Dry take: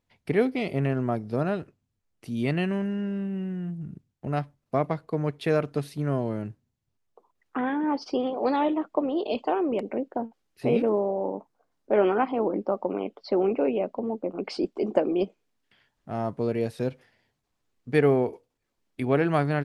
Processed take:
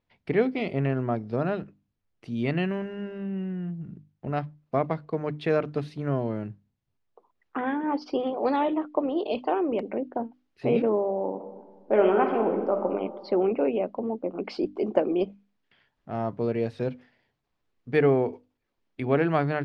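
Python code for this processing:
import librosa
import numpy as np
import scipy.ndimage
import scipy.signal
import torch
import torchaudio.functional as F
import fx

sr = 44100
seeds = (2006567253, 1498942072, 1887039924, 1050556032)

y = fx.reverb_throw(x, sr, start_s=11.29, length_s=1.6, rt60_s=1.4, drr_db=4.5)
y = scipy.signal.sosfilt(scipy.signal.butter(2, 4100.0, 'lowpass', fs=sr, output='sos'), y)
y = fx.hum_notches(y, sr, base_hz=50, count=6)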